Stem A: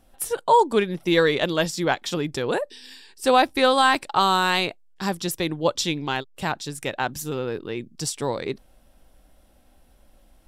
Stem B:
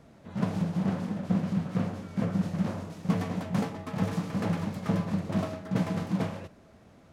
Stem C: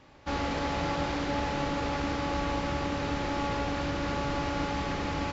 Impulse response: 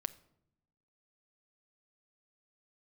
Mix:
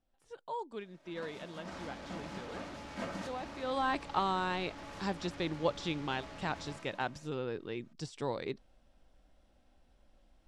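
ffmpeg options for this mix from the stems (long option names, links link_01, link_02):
-filter_complex "[0:a]deesser=0.7,lowpass=6900,volume=-9.5dB,afade=type=in:start_time=3.61:duration=0.24:silence=0.223872,asplit=2[link_01][link_02];[1:a]highpass=frequency=1000:poles=1,aecho=1:1:3.2:0.53,adelay=800,volume=1dB[link_03];[2:a]volume=35dB,asoftclip=hard,volume=-35dB,adelay=1450,volume=-12dB[link_04];[link_02]apad=whole_len=349807[link_05];[link_03][link_05]sidechaincompress=threshold=-46dB:ratio=16:attack=16:release=747[link_06];[link_01][link_06][link_04]amix=inputs=3:normalize=0,lowpass=9300"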